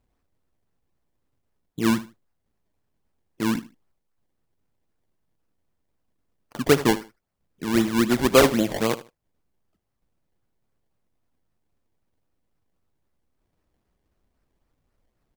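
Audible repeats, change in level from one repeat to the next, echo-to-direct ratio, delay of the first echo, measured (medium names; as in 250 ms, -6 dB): 2, -13.5 dB, -16.5 dB, 76 ms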